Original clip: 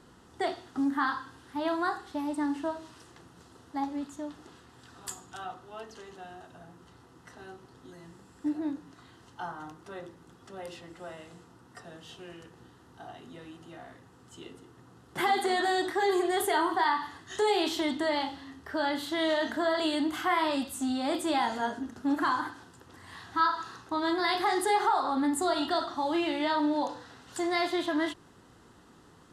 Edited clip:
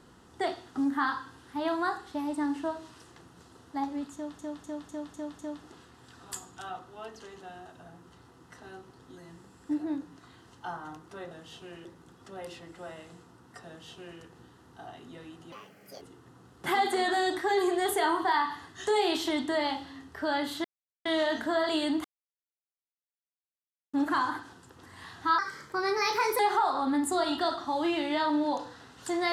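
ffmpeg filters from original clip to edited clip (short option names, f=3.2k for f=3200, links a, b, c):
-filter_complex "[0:a]asplit=15[a][b][c][d][e][f][g][h][i][j][k][l][m][n][o];[a]atrim=end=4.392[p];[b]atrim=start=4.138:end=4.392[q];[c]atrim=start=4.138:end=4.392[r];[d]atrim=start=4.138:end=4.392[s];[e]atrim=start=4.138:end=4.392[t];[f]atrim=start=4.138:end=10.062[u];[g]atrim=start=11.878:end=12.422[v];[h]atrim=start=10.058:end=13.734[w];[i]atrim=start=13.73:end=14.53,asetpts=PTS-STARTPTS,asetrate=71442,aresample=44100[x];[j]atrim=start=14.526:end=19.16,asetpts=PTS-STARTPTS,afade=t=out:st=4.63:d=0.004:c=hsin,apad=pad_dur=0.41[y];[k]atrim=start=19.16:end=20.15,asetpts=PTS-STARTPTS,afade=t=in:d=0.004:c=hsin,afade=t=out:st=0.986:d=0.004:c=hsin[z];[l]atrim=start=20.15:end=22.04,asetpts=PTS-STARTPTS,volume=0[aa];[m]atrim=start=22.04:end=23.494,asetpts=PTS-STARTPTS,afade=t=in:d=0.004:c=hsin[ab];[n]atrim=start=23.49:end=24.69,asetpts=PTS-STARTPTS,asetrate=52479,aresample=44100[ac];[o]atrim=start=24.686[ad];[p][q]acrossfade=d=0.004:c1=hsin:c2=hsin[ae];[ae][r]acrossfade=d=0.004:c1=hsin:c2=hsin[af];[af][s]acrossfade=d=0.004:c1=hsin:c2=hsin[ag];[ag][t]acrossfade=d=0.004:c1=hsin:c2=hsin[ah];[ah][u]acrossfade=d=0.004:c1=hsin:c2=hsin[ai];[ai][v]acrossfade=d=0.004:c1=hsin:c2=hsin[aj];[aj][w]acrossfade=d=0.004:c1=hsin:c2=hsin[ak];[ak][x]acrossfade=d=0.004:c1=hsin:c2=hsin[al];[y][z][aa][ab]concat=n=4:v=0:a=1[am];[al][am]acrossfade=d=0.004:c1=hsin:c2=hsin[an];[an][ac]acrossfade=d=0.004:c1=hsin:c2=hsin[ao];[ao][ad]acrossfade=d=0.004:c1=hsin:c2=hsin"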